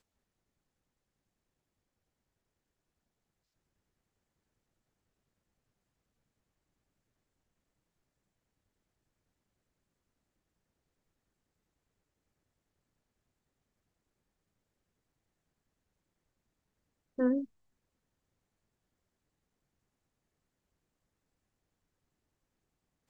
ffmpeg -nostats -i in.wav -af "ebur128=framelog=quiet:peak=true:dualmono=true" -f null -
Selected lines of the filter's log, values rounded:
Integrated loudness:
  I:         -29.0 LUFS
  Threshold: -40.4 LUFS
Loudness range:
  LRA:         4.7 LU
  Threshold: -57.2 LUFS
  LRA low:   -41.4 LUFS
  LRA high:  -36.7 LUFS
True peak:
  Peak:      -18.3 dBFS